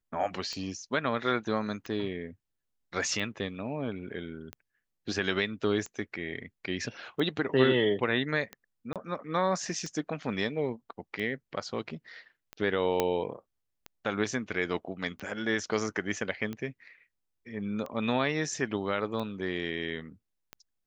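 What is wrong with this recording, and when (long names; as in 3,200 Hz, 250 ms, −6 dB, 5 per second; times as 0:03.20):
scratch tick 45 rpm −24 dBFS
0:08.93–0:08.96: drop-out 27 ms
0:13.00: click −11 dBFS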